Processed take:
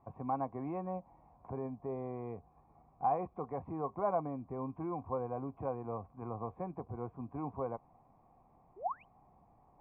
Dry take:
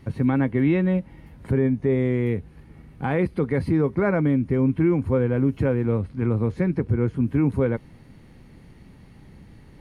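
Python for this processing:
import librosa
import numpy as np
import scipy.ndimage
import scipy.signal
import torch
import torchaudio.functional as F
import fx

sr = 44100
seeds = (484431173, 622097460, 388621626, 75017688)

y = fx.spec_paint(x, sr, seeds[0], shape='rise', start_s=8.76, length_s=0.29, low_hz=340.0, high_hz=3200.0, level_db=-34.0)
y = fx.formant_cascade(y, sr, vowel='a')
y = F.gain(torch.from_numpy(y), 5.5).numpy()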